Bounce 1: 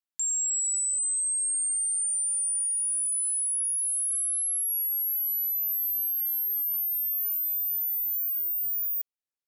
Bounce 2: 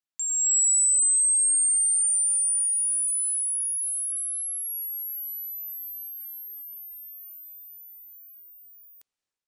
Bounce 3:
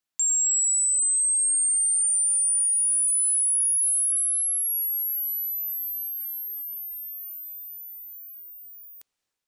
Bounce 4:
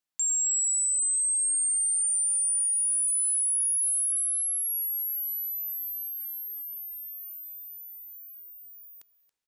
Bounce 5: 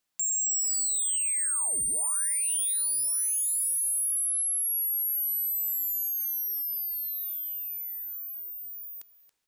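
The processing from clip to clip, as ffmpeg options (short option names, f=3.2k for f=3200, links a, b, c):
-af "lowpass=f=9k:w=0.5412,lowpass=f=9k:w=1.3066,dynaudnorm=f=280:g=3:m=9.5dB,volume=-1.5dB"
-af "alimiter=level_in=1.5dB:limit=-24dB:level=0:latency=1,volume=-1.5dB,volume=6dB"
-af "aecho=1:1:278:0.126,volume=-3.5dB"
-af "asoftclip=type=tanh:threshold=-35dB,volume=8dB"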